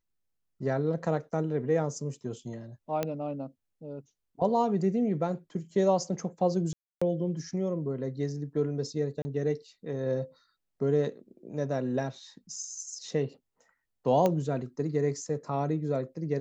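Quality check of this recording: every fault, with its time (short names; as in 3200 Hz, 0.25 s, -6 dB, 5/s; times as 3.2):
3.03 pop -15 dBFS
6.73–7.01 gap 0.285 s
9.22–9.25 gap 30 ms
14.26 pop -14 dBFS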